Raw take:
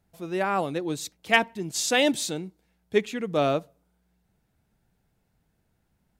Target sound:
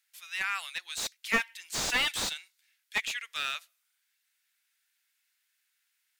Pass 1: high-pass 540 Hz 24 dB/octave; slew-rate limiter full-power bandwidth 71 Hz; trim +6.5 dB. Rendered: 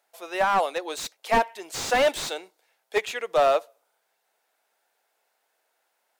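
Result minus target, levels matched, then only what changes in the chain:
500 Hz band +15.0 dB
change: high-pass 1.8 kHz 24 dB/octave

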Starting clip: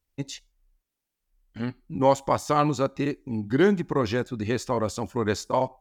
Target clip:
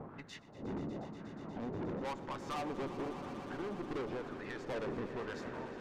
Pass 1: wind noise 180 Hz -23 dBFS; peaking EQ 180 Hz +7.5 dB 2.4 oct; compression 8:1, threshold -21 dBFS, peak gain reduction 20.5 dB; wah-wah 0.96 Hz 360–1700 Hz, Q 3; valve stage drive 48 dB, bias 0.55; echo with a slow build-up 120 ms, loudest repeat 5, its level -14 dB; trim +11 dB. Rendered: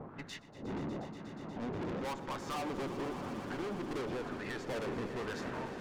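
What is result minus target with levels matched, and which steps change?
compression: peak gain reduction -6.5 dB
change: compression 8:1, threshold -28.5 dBFS, peak gain reduction 27 dB

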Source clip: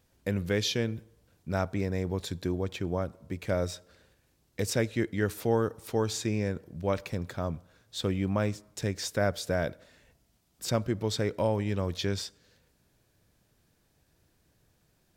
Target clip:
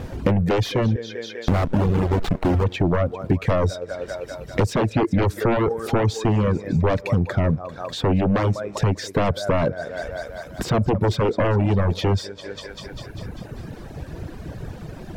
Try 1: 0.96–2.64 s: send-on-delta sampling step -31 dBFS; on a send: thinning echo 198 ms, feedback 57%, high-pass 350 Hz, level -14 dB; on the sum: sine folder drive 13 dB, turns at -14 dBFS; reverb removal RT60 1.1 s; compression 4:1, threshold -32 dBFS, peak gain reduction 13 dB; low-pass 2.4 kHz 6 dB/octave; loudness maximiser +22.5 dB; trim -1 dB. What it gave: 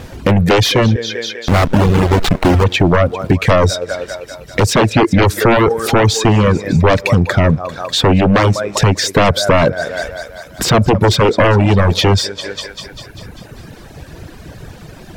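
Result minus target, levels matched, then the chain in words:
compression: peak gain reduction -8 dB; 2 kHz band +4.0 dB
0.96–2.64 s: send-on-delta sampling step -31 dBFS; on a send: thinning echo 198 ms, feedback 57%, high-pass 350 Hz, level -14 dB; on the sum: sine folder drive 13 dB, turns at -14 dBFS; reverb removal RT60 1.1 s; compression 4:1, threshold -42.5 dBFS, peak gain reduction 21 dB; low-pass 820 Hz 6 dB/octave; loudness maximiser +22.5 dB; trim -1 dB

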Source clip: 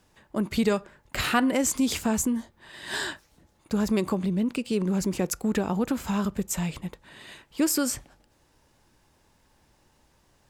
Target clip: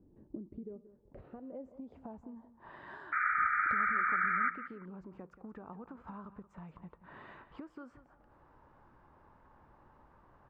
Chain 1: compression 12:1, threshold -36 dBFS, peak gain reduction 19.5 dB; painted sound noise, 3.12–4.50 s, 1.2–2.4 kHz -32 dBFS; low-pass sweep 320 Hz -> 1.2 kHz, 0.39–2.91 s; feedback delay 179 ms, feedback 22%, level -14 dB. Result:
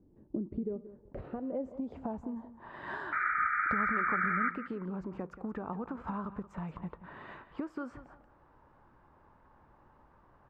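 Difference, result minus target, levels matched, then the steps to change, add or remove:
compression: peak gain reduction -9.5 dB
change: compression 12:1, threshold -46.5 dBFS, peak gain reduction 29 dB

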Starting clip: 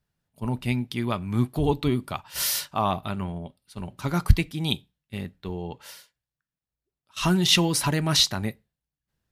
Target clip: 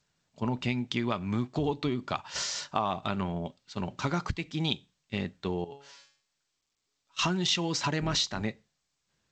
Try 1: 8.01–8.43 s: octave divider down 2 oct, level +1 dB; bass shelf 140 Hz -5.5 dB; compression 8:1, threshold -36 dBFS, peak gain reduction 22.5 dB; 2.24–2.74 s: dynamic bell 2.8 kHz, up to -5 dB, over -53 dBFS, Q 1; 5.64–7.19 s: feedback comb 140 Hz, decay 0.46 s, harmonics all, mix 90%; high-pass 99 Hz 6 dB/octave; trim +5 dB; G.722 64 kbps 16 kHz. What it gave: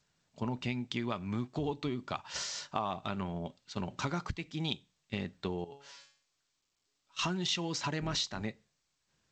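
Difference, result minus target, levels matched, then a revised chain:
compression: peak gain reduction +5 dB
8.01–8.43 s: octave divider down 2 oct, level +1 dB; bass shelf 140 Hz -5.5 dB; compression 8:1, threshold -30 dBFS, peak gain reduction 17.5 dB; 2.24–2.74 s: dynamic bell 2.8 kHz, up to -5 dB, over -53 dBFS, Q 1; 5.64–7.19 s: feedback comb 140 Hz, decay 0.46 s, harmonics all, mix 90%; high-pass 99 Hz 6 dB/octave; trim +5 dB; G.722 64 kbps 16 kHz

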